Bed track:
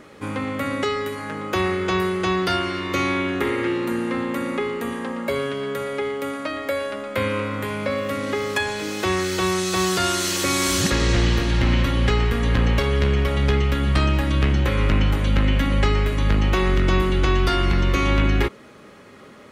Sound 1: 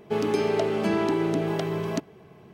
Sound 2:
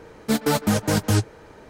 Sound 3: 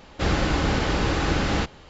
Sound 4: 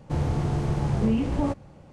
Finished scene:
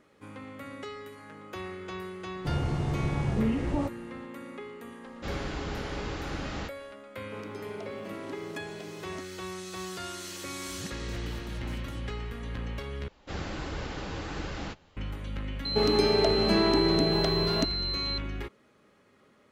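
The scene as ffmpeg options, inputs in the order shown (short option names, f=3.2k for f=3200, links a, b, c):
-filter_complex "[3:a]asplit=2[a][b];[1:a]asplit=2[c][d];[0:a]volume=-17dB[e];[2:a]acompressor=threshold=-30dB:ratio=6:attack=3.2:release=140:knee=1:detection=peak[f];[b]flanger=delay=1.8:depth=9.6:regen=-27:speed=1.4:shape=sinusoidal[g];[d]aeval=exprs='val(0)+0.0316*sin(2*PI*4100*n/s)':c=same[h];[e]asplit=2[i][j];[i]atrim=end=13.084[k];[g]atrim=end=1.89,asetpts=PTS-STARTPTS,volume=-9.5dB[l];[j]atrim=start=14.966[m];[4:a]atrim=end=1.92,asetpts=PTS-STARTPTS,volume=-4dB,afade=t=in:d=0.004:c=hsin,afade=t=out:st=1.916:d=0.004:c=hsin,adelay=2350[n];[a]atrim=end=1.89,asetpts=PTS-STARTPTS,volume=-12.5dB,afade=t=in:d=0.004:c=hsin,afade=t=out:st=1.886:d=0.004:c=hsin,adelay=5030[o];[c]atrim=end=2.53,asetpts=PTS-STARTPTS,volume=-17dB,afade=t=in:d=0.004:c=hsin,afade=t=out:st=2.526:d=0.004:c=hsin,adelay=7210[p];[f]atrim=end=1.69,asetpts=PTS-STARTPTS,volume=-14.5dB,afade=t=in:d=0.004:c=hsin,afade=t=out:st=1.686:d=0.004:c=hsin,adelay=10800[q];[h]atrim=end=2.53,asetpts=PTS-STARTPTS,afade=t=in:d=0.004:c=hsin,afade=t=out:st=2.526:d=0.004:c=hsin,adelay=15650[r];[k][l]acrossfade=d=0.004:c1=hsin:c2=hsin[s];[s][m]acrossfade=d=0.004:c1=hsin:c2=hsin[t];[t][n][o][p][q][r]amix=inputs=6:normalize=0"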